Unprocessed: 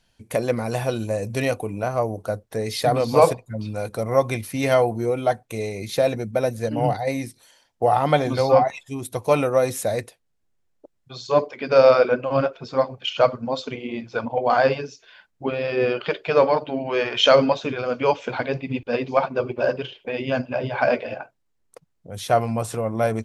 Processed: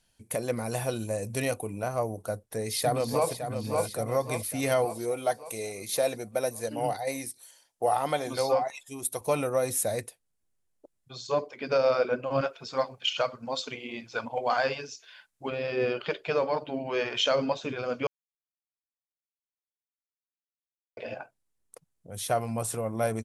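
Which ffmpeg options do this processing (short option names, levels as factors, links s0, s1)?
-filter_complex "[0:a]asplit=2[s0][s1];[s1]afade=t=in:st=2.44:d=0.01,afade=t=out:st=3.3:d=0.01,aecho=0:1:560|1120|1680|2240|2800|3360|3920:0.398107|0.218959|0.120427|0.0662351|0.0364293|0.0200361|0.0110199[s2];[s0][s2]amix=inputs=2:normalize=0,asettb=1/sr,asplit=3[s3][s4][s5];[s3]atrim=end=4.854[s6];[s4]atrim=start=4.85:end=9.21,asetpts=PTS-STARTPTS,afade=t=in:d=0.004:c=qsin,afade=t=out:st=4.356:d=0.004:c=qsin,bass=f=250:g=-9,treble=f=4000:g=3[s7];[s5]atrim=start=9.206[s8];[s6][s7]acrossfade=d=0.004:c1=hsin:c2=qsin[s9];[s9][s8]acrossfade=d=0.004:c1=qsin:c2=hsin,asettb=1/sr,asplit=3[s10][s11][s12];[s10]atrim=end=12.414[s13];[s11]atrim=start=12.41:end=15.5,asetpts=PTS-STARTPTS,afade=t=in:d=0.004:c=qsin,afade=t=out:st=3.086:d=0.004:c=qsin,tiltshelf=f=780:g=-5[s14];[s12]atrim=start=15.496[s15];[s13][s14]acrossfade=d=0.004:c1=hsin:c2=qsin[s16];[s16][s15]acrossfade=d=0.004:c1=qsin:c2=hsin,asplit=3[s17][s18][s19];[s17]atrim=end=18.07,asetpts=PTS-STARTPTS,afade=t=out:st=18.066:d=0.004:c=hsin[s20];[s18]atrim=start=18.07:end=20.97,asetpts=PTS-STARTPTS,volume=0[s21];[s19]atrim=start=20.97,asetpts=PTS-STARTPTS,afade=t=in:d=0.004:c=hsin[s22];[s20][s21][s22]concat=n=3:v=0:a=1,equalizer=f=10000:w=0.97:g=11.5,alimiter=limit=0.376:level=0:latency=1:release=261,volume=0.473"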